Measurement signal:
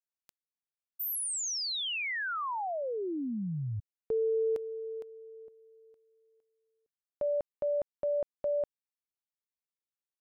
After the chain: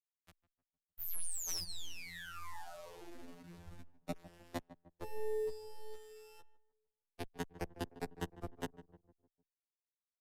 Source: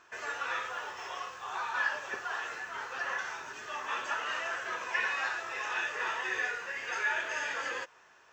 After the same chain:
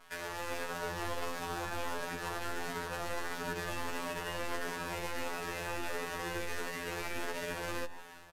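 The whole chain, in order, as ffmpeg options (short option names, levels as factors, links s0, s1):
-filter_complex "[0:a]bass=f=250:g=11,treble=f=4000:g=-13,afftfilt=real='re*lt(hypot(re,im),0.0708)':imag='im*lt(hypot(re,im),0.0708)':win_size=1024:overlap=0.75,alimiter=level_in=3.98:limit=0.0631:level=0:latency=1:release=170,volume=0.251,acrusher=bits=8:dc=4:mix=0:aa=0.000001,afftfilt=real='hypot(re,im)*cos(PI*b)':imag='0':win_size=2048:overlap=0.75,dynaudnorm=f=410:g=3:m=2.24,aresample=32000,aresample=44100,adynamicequalizer=threshold=0.00112:dfrequency=420:dqfactor=1.1:tfrequency=420:tqfactor=1.1:attack=5:release=100:ratio=0.3:range=2:mode=boostabove:tftype=bell,asplit=2[s0][s1];[s1]adelay=152,lowpass=f=1200:p=1,volume=0.178,asplit=2[s2][s3];[s3]adelay=152,lowpass=f=1200:p=1,volume=0.49,asplit=2[s4][s5];[s5]adelay=152,lowpass=f=1200:p=1,volume=0.49,asplit=2[s6][s7];[s7]adelay=152,lowpass=f=1200:p=1,volume=0.49,asplit=2[s8][s9];[s9]adelay=152,lowpass=f=1200:p=1,volume=0.49[s10];[s2][s4][s6][s8][s10]amix=inputs=5:normalize=0[s11];[s0][s11]amix=inputs=2:normalize=0,acrossover=split=290|580[s12][s13][s14];[s13]acompressor=threshold=0.00316:ratio=6[s15];[s14]acompressor=threshold=0.00562:ratio=5[s16];[s12][s15][s16]amix=inputs=3:normalize=0,asplit=2[s17][s18];[s18]adelay=5.1,afreqshift=1.5[s19];[s17][s19]amix=inputs=2:normalize=1,volume=3.76"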